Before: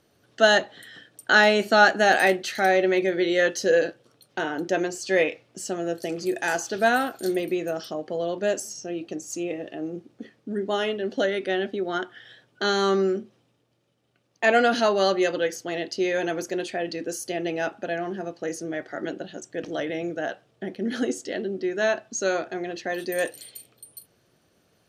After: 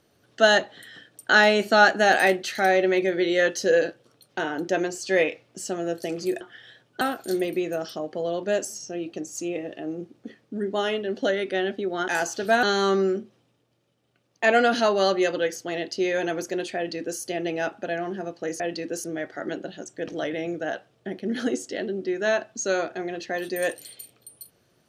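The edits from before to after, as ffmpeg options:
-filter_complex "[0:a]asplit=7[s0][s1][s2][s3][s4][s5][s6];[s0]atrim=end=6.412[s7];[s1]atrim=start=12.028:end=12.632[s8];[s2]atrim=start=6.958:end=12.032[s9];[s3]atrim=start=6.408:end=6.962[s10];[s4]atrim=start=12.628:end=18.602[s11];[s5]atrim=start=16.758:end=17.202[s12];[s6]atrim=start=18.598[s13];[s7][s8]acrossfade=d=0.004:c1=hsin:c2=hsin[s14];[s14][s9]acrossfade=d=0.004:c1=hsin:c2=hsin[s15];[s15][s10]acrossfade=d=0.004:c1=hsin:c2=hsin[s16];[s16][s11]acrossfade=d=0.004:c1=hsin:c2=hsin[s17];[s17][s12]acrossfade=d=0.004:c1=hsin:c2=hsin[s18];[s18][s13]acrossfade=d=0.004:c1=hsin:c2=hsin"

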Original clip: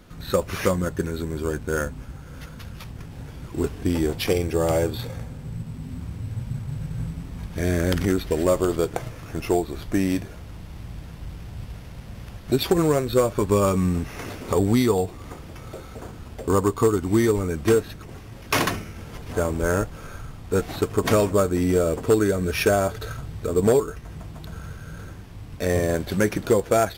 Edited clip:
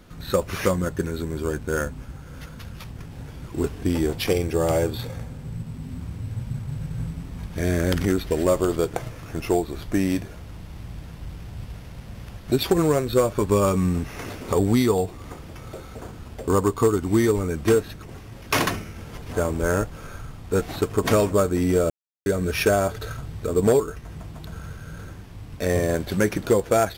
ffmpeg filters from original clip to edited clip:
-filter_complex "[0:a]asplit=3[s0][s1][s2];[s0]atrim=end=21.9,asetpts=PTS-STARTPTS,afade=t=out:st=21.896:d=0.004:c=hsin[s3];[s1]atrim=start=21.9:end=22.26,asetpts=PTS-STARTPTS,volume=0[s4];[s2]atrim=start=22.26,asetpts=PTS-STARTPTS,afade=t=in:d=0.004:c=hsin[s5];[s3][s4][s5]concat=n=3:v=0:a=1"

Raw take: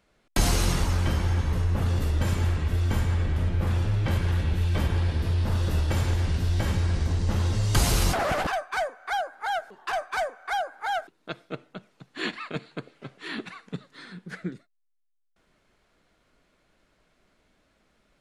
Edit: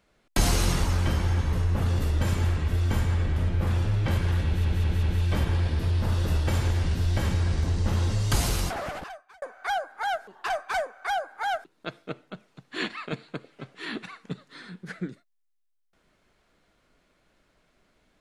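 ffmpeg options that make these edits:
-filter_complex "[0:a]asplit=5[s0][s1][s2][s3][s4];[s0]atrim=end=4.652[s5];[s1]atrim=start=4.458:end=4.652[s6];[s2]atrim=start=4.458:end=4.652[s7];[s3]atrim=start=4.458:end=8.85,asetpts=PTS-STARTPTS,afade=t=out:st=3.032:d=1.36[s8];[s4]atrim=start=8.85,asetpts=PTS-STARTPTS,afade=t=in:d=0.004:c=hsin[s9];[s5][s6]acrossfade=d=0.004:c1=hsin:c2=hsin[s10];[s10][s7]acrossfade=d=0.004:c1=hsin:c2=hsin[s11];[s8][s9]concat=n=2:v=0:a=1[s12];[s11][s12]acrossfade=d=0.004:c1=hsin:c2=hsin"

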